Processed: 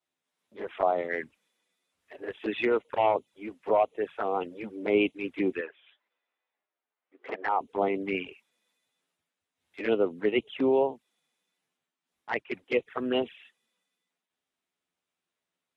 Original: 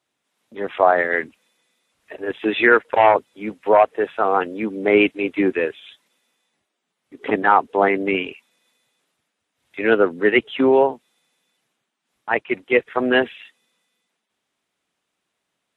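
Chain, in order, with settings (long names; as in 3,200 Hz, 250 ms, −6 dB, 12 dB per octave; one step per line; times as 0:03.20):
0:05.61–0:07.61: band-pass filter 470–2,200 Hz
flanger swept by the level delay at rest 11.8 ms, full sweep at −14.5 dBFS
level −8 dB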